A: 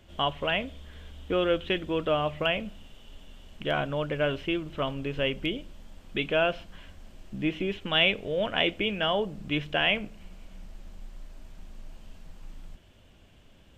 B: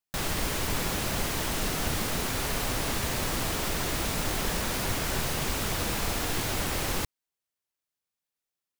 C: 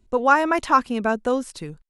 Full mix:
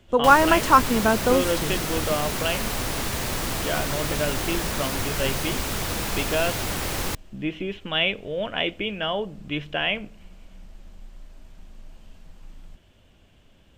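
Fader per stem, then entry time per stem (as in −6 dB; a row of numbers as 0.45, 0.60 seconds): 0.0, +2.0, +1.5 decibels; 0.00, 0.10, 0.00 seconds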